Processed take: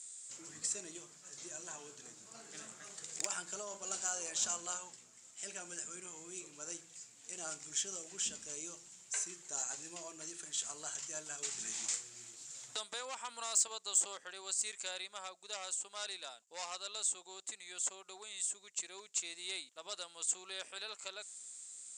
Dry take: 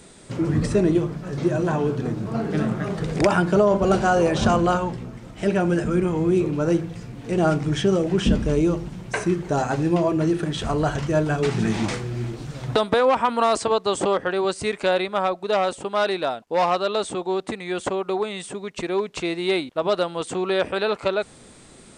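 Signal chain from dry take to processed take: band-pass filter 7.3 kHz, Q 6.5; saturation -27 dBFS, distortion -22 dB; trim +9.5 dB

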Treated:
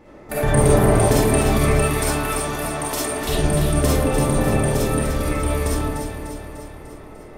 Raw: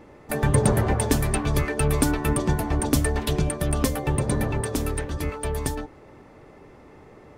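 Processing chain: 1.72–3.22 s: high-pass 870 Hz 6 dB/octave; echo whose repeats swap between lows and highs 149 ms, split 1.4 kHz, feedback 76%, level -4.5 dB; algorithmic reverb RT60 0.78 s, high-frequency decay 0.5×, pre-delay 10 ms, DRR -6.5 dB; trim -2 dB

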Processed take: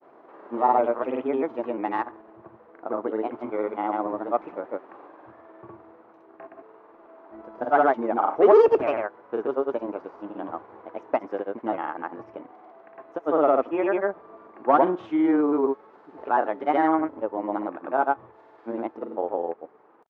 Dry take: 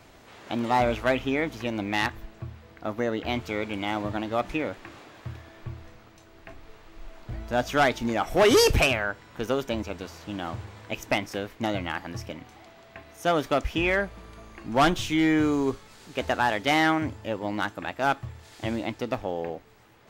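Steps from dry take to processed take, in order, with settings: Chebyshev band-pass 340–1100 Hz, order 2; granulator, pitch spread up and down by 0 st; trim +5.5 dB

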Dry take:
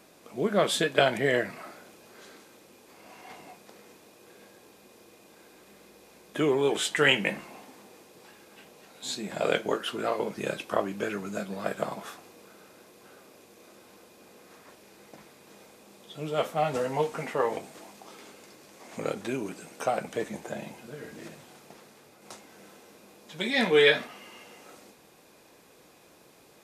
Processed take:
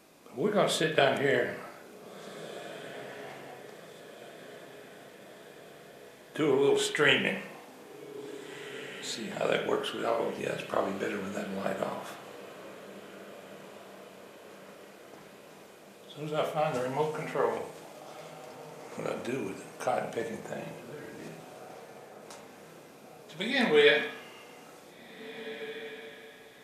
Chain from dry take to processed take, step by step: echo that smears into a reverb 1862 ms, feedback 57%, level -16 dB; reverberation RT60 0.60 s, pre-delay 31 ms, DRR 4.5 dB; trim -3 dB

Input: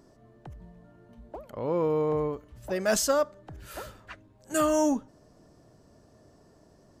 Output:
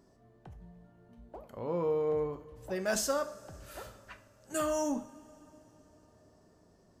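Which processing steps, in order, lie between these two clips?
two-slope reverb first 0.41 s, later 4 s, from -21 dB, DRR 7 dB; trim -6.5 dB

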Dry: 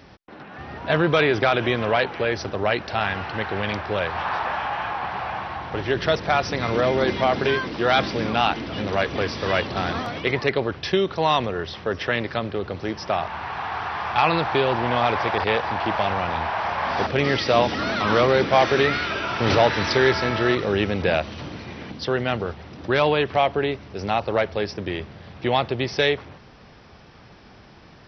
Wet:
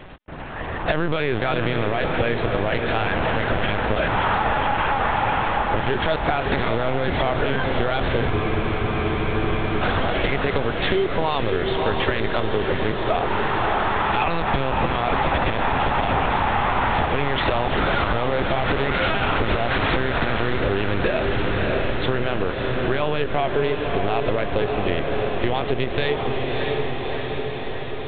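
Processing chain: LPC vocoder at 8 kHz pitch kept; peak limiter -13 dBFS, peak gain reduction 11 dB; echo that smears into a reverb 618 ms, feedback 68%, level -6 dB; compression, threshold -24 dBFS, peak gain reduction 7.5 dB; spectral freeze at 8.32 s, 1.48 s; trim +7.5 dB

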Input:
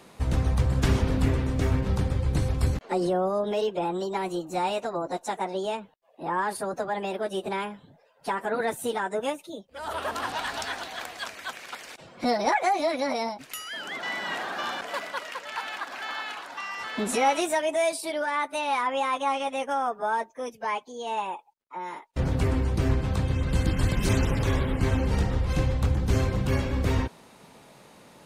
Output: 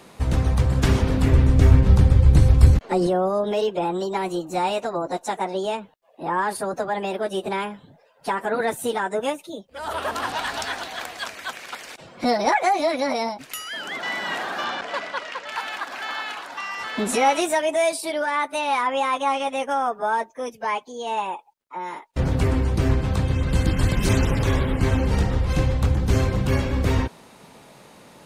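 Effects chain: 1.32–3.07 s: bass shelf 130 Hz +11 dB; 14.64–15.49 s: low-pass 5.8 kHz 12 dB/octave; trim +4 dB

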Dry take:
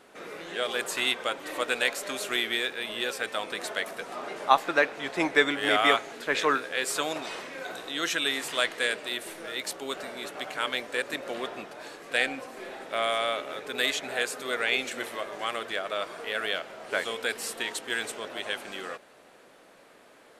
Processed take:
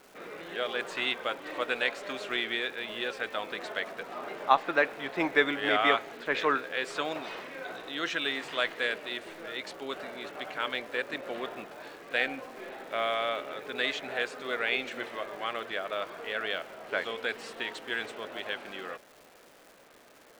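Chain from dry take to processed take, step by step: low-pass 3.6 kHz 12 dB/octave; crackle 520 per s -44 dBFS; trim -2 dB

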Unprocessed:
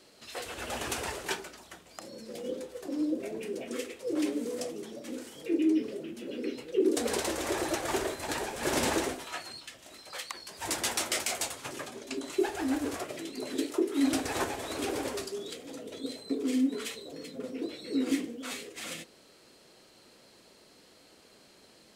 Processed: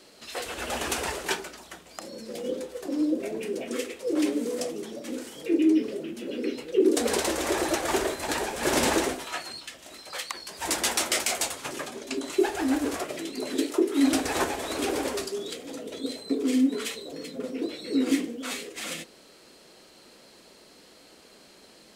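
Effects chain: peaking EQ 110 Hz -13.5 dB 0.29 oct; trim +5 dB

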